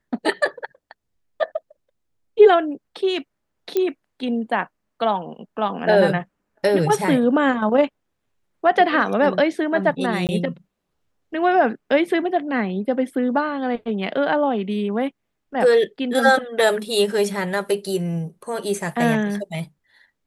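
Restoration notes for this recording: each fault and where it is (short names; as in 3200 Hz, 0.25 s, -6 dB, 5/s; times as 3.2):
3.77 pop -9 dBFS
10.27–10.29 gap 18 ms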